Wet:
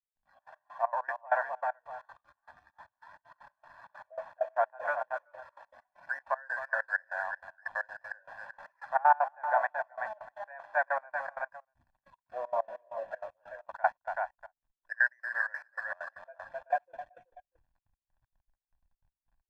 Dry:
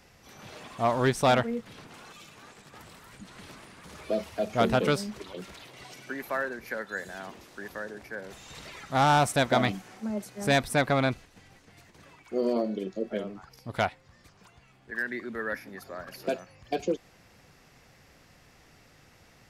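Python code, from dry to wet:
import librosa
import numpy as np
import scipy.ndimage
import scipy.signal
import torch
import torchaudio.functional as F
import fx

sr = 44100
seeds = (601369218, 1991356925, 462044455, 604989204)

y = scipy.signal.sosfilt(scipy.signal.cheby1(3, 1.0, [570.0, 1800.0], 'bandpass', fs=sr, output='sos'), x)
y = y + 10.0 ** (-13.0 / 20.0) * np.pad(y, (int(261 * sr / 1000.0), 0))[:len(y)]
y = fx.backlash(y, sr, play_db=-50.5)
y = fx.peak_eq(y, sr, hz=1200.0, db=9.5, octaves=1.6)
y = y + 10.0 ** (-10.5 / 20.0) * np.pad(y, (int(380 * sr / 1000.0), 0))[:len(y)]
y = fx.step_gate(y, sr, bpm=194, pattern='..xxx.x..xx.x.x', floor_db=-24.0, edge_ms=4.5)
y = y + 0.92 * np.pad(y, (int(1.2 * sr / 1000.0), 0))[:len(y)]
y = fx.rider(y, sr, range_db=4, speed_s=0.5)
y = fx.noise_reduce_blind(y, sr, reduce_db=10)
y = y * 10.0 ** (-7.5 / 20.0)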